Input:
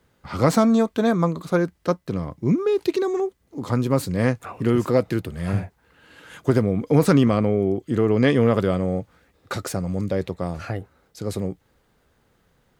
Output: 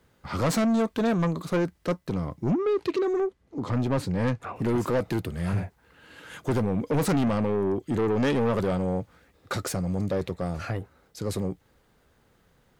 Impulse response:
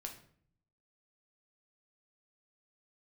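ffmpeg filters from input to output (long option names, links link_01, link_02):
-filter_complex "[0:a]asettb=1/sr,asplit=3[link_01][link_02][link_03];[link_01]atrim=end=2.514[link_04];[link_02]atrim=start=2.51:end=4.56,asetpts=PTS-STARTPTS,afade=type=in:duration=0.004:curve=qsin,afade=type=out:start_time=2.046:duration=0.004:curve=qsin,aemphasis=mode=reproduction:type=50fm[link_05];[link_03]atrim=start=4.556[link_06];[link_04][link_05]acrossfade=duration=0.004:curve1=hsin:curve2=qsin[link_07];[link_07][link_06]acrossfade=duration=0.004:curve1=qsin:curve2=hsin,asoftclip=type=tanh:threshold=-20dB"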